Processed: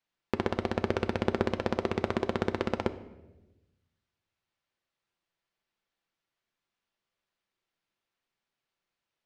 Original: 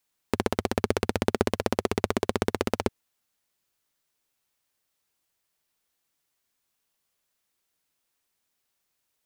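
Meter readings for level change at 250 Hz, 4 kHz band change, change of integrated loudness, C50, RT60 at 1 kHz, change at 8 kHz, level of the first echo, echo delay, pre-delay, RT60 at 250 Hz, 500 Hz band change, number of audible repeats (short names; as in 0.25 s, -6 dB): -2.5 dB, -6.0 dB, -3.0 dB, 14.5 dB, 0.90 s, under -15 dB, none, none, 5 ms, 1.4 s, -3.5 dB, none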